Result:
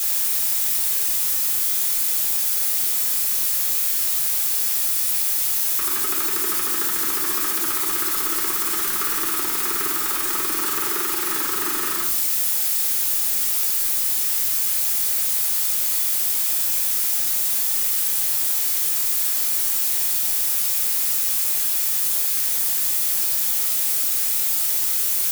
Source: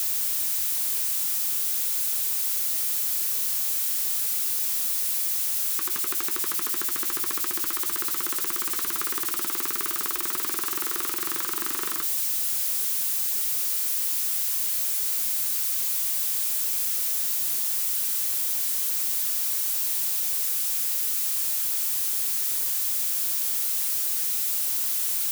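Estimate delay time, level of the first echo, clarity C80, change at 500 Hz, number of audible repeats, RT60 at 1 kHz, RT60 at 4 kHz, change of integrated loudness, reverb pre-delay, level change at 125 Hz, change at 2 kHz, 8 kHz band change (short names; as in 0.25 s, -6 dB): none, none, 10.5 dB, +7.0 dB, none, 0.60 s, 0.40 s, +5.0 dB, 4 ms, n/a, +6.5 dB, +5.0 dB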